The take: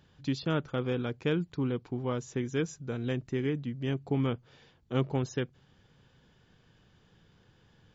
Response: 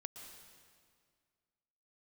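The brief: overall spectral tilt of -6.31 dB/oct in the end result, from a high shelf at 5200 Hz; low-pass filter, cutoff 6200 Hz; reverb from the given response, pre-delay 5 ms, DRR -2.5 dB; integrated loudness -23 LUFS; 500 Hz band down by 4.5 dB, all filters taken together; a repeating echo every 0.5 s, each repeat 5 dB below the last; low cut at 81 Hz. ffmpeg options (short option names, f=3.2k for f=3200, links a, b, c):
-filter_complex "[0:a]highpass=81,lowpass=6.2k,equalizer=f=500:t=o:g=-5.5,highshelf=f=5.2k:g=-7.5,aecho=1:1:500|1000|1500|2000|2500|3000|3500:0.562|0.315|0.176|0.0988|0.0553|0.031|0.0173,asplit=2[a][b];[1:a]atrim=start_sample=2205,adelay=5[c];[b][c]afir=irnorm=-1:irlink=0,volume=6.5dB[d];[a][d]amix=inputs=2:normalize=0,volume=7dB"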